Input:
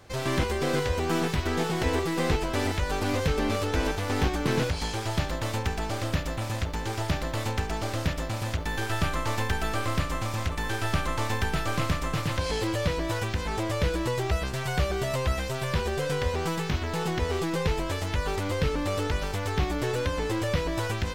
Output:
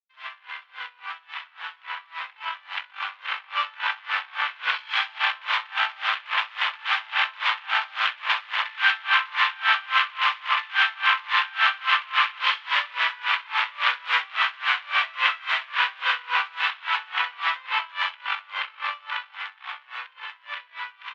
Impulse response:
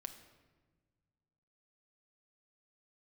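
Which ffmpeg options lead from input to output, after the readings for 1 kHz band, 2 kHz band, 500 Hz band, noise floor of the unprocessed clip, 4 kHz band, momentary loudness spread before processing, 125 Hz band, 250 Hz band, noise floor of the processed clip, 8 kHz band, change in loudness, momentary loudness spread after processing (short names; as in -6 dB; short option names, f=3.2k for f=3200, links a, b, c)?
+6.0 dB, +10.5 dB, -20.5 dB, -33 dBFS, +8.5 dB, 4 LU, under -40 dB, under -40 dB, -55 dBFS, under -15 dB, +4.5 dB, 15 LU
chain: -filter_complex "[0:a]afftfilt=real='re*gte(hypot(re,im),0.00501)':imag='im*gte(hypot(re,im),0.00501)':win_size=1024:overlap=0.75,alimiter=limit=-24dB:level=0:latency=1:release=28,dynaudnorm=f=580:g=13:m=14dB,crystalizer=i=2:c=0,aeval=exprs='(mod(3.16*val(0)+1,2)-1)/3.16':c=same,aeval=exprs='0.335*(cos(1*acos(clip(val(0)/0.335,-1,1)))-cos(1*PI/2))+0.0531*(cos(6*acos(clip(val(0)/0.335,-1,1)))-cos(6*PI/2))':c=same,acrusher=bits=6:mix=0:aa=0.000001,asuperpass=centerf=1800:order=8:qfactor=0.79,asplit=2[a][b];[b]aecho=0:1:65|130|195|260|325|390|455|520:0.562|0.337|0.202|0.121|0.0729|0.0437|0.0262|0.0157[c];[a][c]amix=inputs=2:normalize=0,aeval=exprs='val(0)*pow(10,-26*(0.5-0.5*cos(2*PI*3.6*n/s))/20)':c=same,volume=4dB"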